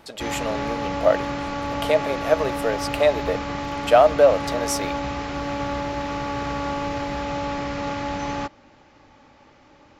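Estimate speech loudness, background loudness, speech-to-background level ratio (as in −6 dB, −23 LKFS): −22.0 LKFS, −28.0 LKFS, 6.0 dB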